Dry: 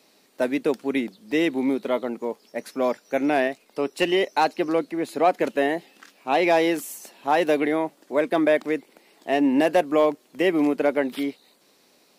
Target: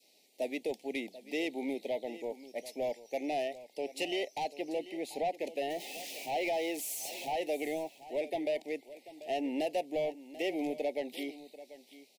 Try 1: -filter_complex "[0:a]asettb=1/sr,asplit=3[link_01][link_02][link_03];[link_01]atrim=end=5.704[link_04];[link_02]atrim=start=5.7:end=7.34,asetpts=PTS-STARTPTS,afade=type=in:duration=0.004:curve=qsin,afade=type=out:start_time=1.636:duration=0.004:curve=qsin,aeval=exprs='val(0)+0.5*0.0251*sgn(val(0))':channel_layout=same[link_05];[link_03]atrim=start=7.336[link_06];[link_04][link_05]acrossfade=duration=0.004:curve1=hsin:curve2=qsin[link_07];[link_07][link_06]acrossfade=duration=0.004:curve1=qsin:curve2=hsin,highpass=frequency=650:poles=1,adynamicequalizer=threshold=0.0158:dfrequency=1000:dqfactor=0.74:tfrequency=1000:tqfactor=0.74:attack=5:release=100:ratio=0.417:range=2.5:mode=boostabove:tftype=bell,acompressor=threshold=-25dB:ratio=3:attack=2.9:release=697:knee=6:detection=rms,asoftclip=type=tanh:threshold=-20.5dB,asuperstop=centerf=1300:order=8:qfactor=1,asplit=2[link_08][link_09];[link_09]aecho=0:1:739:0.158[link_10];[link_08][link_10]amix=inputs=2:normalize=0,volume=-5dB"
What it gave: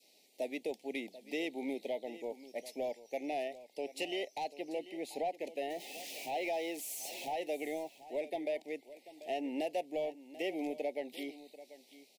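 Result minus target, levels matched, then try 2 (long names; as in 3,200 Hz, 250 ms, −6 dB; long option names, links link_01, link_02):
downward compressor: peak gain reduction +5 dB
-filter_complex "[0:a]asettb=1/sr,asplit=3[link_01][link_02][link_03];[link_01]atrim=end=5.704[link_04];[link_02]atrim=start=5.7:end=7.34,asetpts=PTS-STARTPTS,afade=type=in:duration=0.004:curve=qsin,afade=type=out:start_time=1.636:duration=0.004:curve=qsin,aeval=exprs='val(0)+0.5*0.0251*sgn(val(0))':channel_layout=same[link_05];[link_03]atrim=start=7.336[link_06];[link_04][link_05]acrossfade=duration=0.004:curve1=hsin:curve2=qsin[link_07];[link_07][link_06]acrossfade=duration=0.004:curve1=qsin:curve2=hsin,highpass=frequency=650:poles=1,adynamicequalizer=threshold=0.0158:dfrequency=1000:dqfactor=0.74:tfrequency=1000:tqfactor=0.74:attack=5:release=100:ratio=0.417:range=2.5:mode=boostabove:tftype=bell,acompressor=threshold=-17.5dB:ratio=3:attack=2.9:release=697:knee=6:detection=rms,asoftclip=type=tanh:threshold=-20.5dB,asuperstop=centerf=1300:order=8:qfactor=1,asplit=2[link_08][link_09];[link_09]aecho=0:1:739:0.158[link_10];[link_08][link_10]amix=inputs=2:normalize=0,volume=-5dB"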